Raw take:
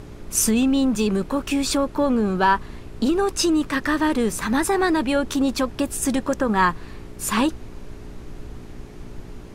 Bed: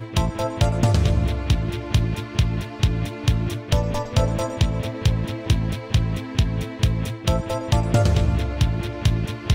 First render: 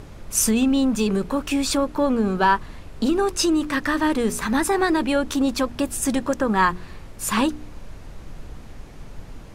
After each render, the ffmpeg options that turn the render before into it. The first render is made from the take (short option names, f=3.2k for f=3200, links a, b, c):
-af "bandreject=f=60:t=h:w=4,bandreject=f=120:t=h:w=4,bandreject=f=180:t=h:w=4,bandreject=f=240:t=h:w=4,bandreject=f=300:t=h:w=4,bandreject=f=360:t=h:w=4,bandreject=f=420:t=h:w=4"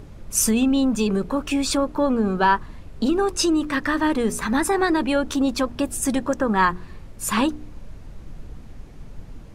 -af "afftdn=nr=6:nf=-40"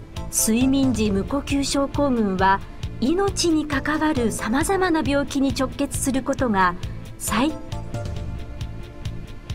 -filter_complex "[1:a]volume=-11.5dB[a];[0:a][a]amix=inputs=2:normalize=0"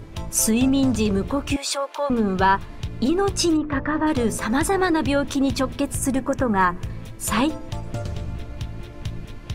-filter_complex "[0:a]asettb=1/sr,asplit=3[a][b][c];[a]atrim=end=1.564[d];[b]atrim=start=1.56:end=2.1,asetpts=PTS-STARTPTS,afade=t=in:d=0.004:c=qsin,afade=t=out:st=0.536:d=0.004:c=qsin,highpass=f=550:w=0.5412,highpass=f=550:w=1.3066[e];[c]atrim=start=2.096[f];[d][e]acrossfade=d=0.004:c1=hsin:c2=qsin[g];[g][f]acrossfade=d=0.004:c1=qsin:c2=hsin,asplit=3[h][i][j];[h]afade=t=out:st=3.56:d=0.02[k];[i]lowpass=1.6k,afade=t=in:st=3.56:d=0.02,afade=t=out:st=4.06:d=0.02[l];[j]afade=t=in:st=4.06:d=0.02[m];[k][l][m]amix=inputs=3:normalize=0,asettb=1/sr,asplit=3[n][o][p];[n]atrim=end=5.934[q];[o]atrim=start=5.93:end=6.9,asetpts=PTS-STARTPTS,afade=t=in:d=0.004:c=qsin,afade=t=out:st=0.966:d=0.004:c=qsin,equalizer=f=3.9k:w=1.6:g=-9.5[r];[p]atrim=start=6.896[s];[q][r]acrossfade=d=0.004:c1=hsin:c2=qsin[t];[t][s]acrossfade=d=0.004:c1=qsin:c2=hsin"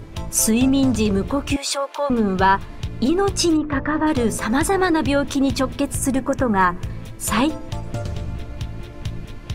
-af "volume=2dB"